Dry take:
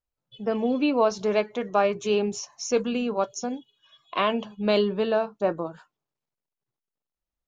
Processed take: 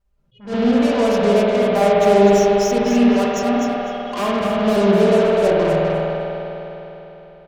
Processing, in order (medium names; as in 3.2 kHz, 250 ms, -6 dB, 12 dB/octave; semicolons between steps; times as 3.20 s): comb 5.1 ms, depth 85%; vibrato 2.2 Hz 53 cents; in parallel at -1 dB: peak limiter -21.5 dBFS, peak gain reduction 16.5 dB; on the sum: tilt EQ -2.5 dB/octave; saturation -18 dBFS, distortion -8 dB; Chebyshev shaper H 3 -11 dB, 5 -10 dB, 6 -25 dB, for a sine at -18 dBFS; on a send: feedback delay 252 ms, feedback 21%, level -5.5 dB; on the sum: spring tank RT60 3.6 s, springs 50 ms, chirp 75 ms, DRR -4 dB; attacks held to a fixed rise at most 180 dB/s